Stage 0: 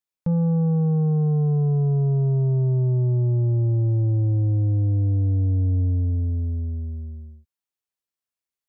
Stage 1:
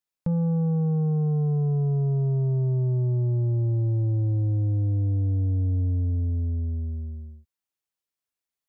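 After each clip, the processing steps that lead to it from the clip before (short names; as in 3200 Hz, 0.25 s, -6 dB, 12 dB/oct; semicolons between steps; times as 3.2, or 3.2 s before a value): compressor 2:1, threshold -25 dBFS, peak gain reduction 3.5 dB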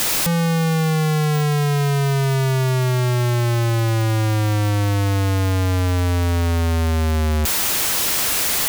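infinite clipping; gain +6.5 dB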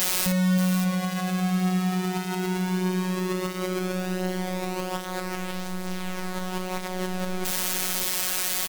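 tapped delay 55/579 ms -5/-7 dB; limiter -16 dBFS, peak gain reduction 4.5 dB; robotiser 184 Hz; gain -2.5 dB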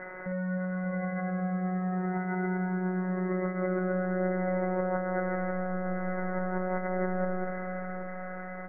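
vocal rider within 3 dB 0.5 s; rippled Chebyshev low-pass 2100 Hz, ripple 9 dB; diffused feedback echo 0.525 s, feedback 59%, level -10.5 dB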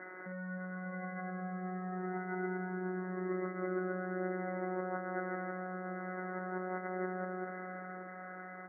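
speaker cabinet 270–2000 Hz, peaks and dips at 310 Hz +7 dB, 540 Hz -8 dB, 900 Hz -5 dB; gain -3.5 dB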